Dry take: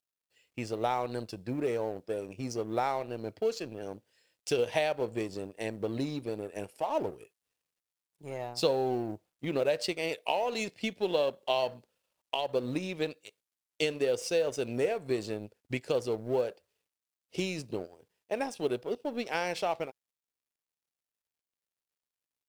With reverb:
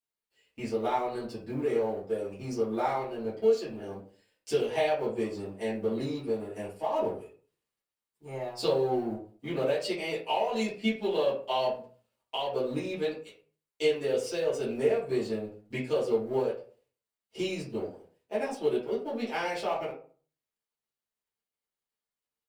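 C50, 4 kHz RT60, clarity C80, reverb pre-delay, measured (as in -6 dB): 6.5 dB, 0.25 s, 12.0 dB, 4 ms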